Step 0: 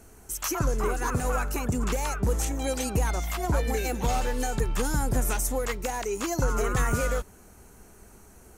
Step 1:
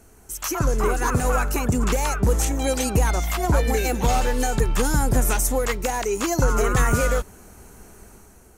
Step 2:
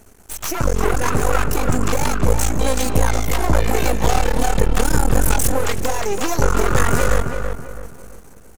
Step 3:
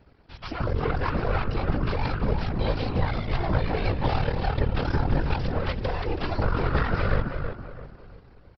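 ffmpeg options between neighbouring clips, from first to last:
-af "dynaudnorm=f=160:g=7:m=2"
-filter_complex "[0:a]aeval=exprs='max(val(0),0)':c=same,asplit=2[s0][s1];[s1]adelay=329,lowpass=f=2300:p=1,volume=0.501,asplit=2[s2][s3];[s3]adelay=329,lowpass=f=2300:p=1,volume=0.36,asplit=2[s4][s5];[s5]adelay=329,lowpass=f=2300:p=1,volume=0.36,asplit=2[s6][s7];[s7]adelay=329,lowpass=f=2300:p=1,volume=0.36[s8];[s2][s4][s6][s8]amix=inputs=4:normalize=0[s9];[s0][s9]amix=inputs=2:normalize=0,volume=2"
-af "aresample=11025,aresample=44100,afftfilt=real='hypot(re,im)*cos(2*PI*random(0))':imag='hypot(re,im)*sin(2*PI*random(1))':win_size=512:overlap=0.75,volume=0.794"

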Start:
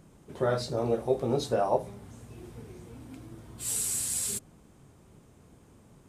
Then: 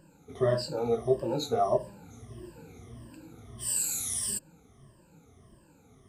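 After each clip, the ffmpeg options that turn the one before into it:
-af "afftfilt=real='re*pow(10,20/40*sin(2*PI*(1.3*log(max(b,1)*sr/1024/100)/log(2)-(-1.6)*(pts-256)/sr)))':imag='im*pow(10,20/40*sin(2*PI*(1.3*log(max(b,1)*sr/1024/100)/log(2)-(-1.6)*(pts-256)/sr)))':win_size=1024:overlap=0.75,volume=0.562"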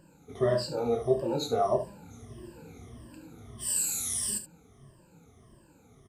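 -af "aecho=1:1:29|72:0.299|0.237"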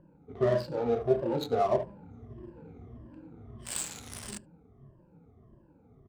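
-af "adynamicsmooth=sensitivity=7:basefreq=950"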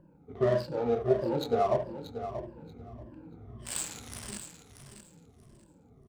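-af "aecho=1:1:633|1266|1899:0.282|0.0535|0.0102"

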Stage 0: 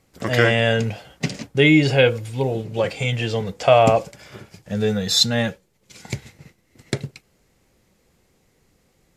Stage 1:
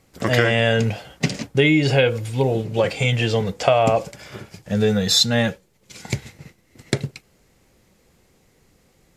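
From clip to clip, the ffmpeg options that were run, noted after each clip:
-af "acompressor=threshold=0.158:ratio=6,volume=1.5"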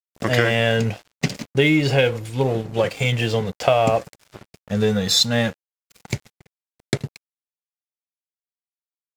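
-af "aeval=exprs='sgn(val(0))*max(abs(val(0))-0.0168,0)':c=same"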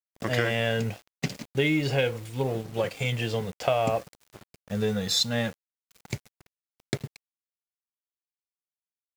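-af "acrusher=bits=6:mix=0:aa=0.000001,volume=0.422"

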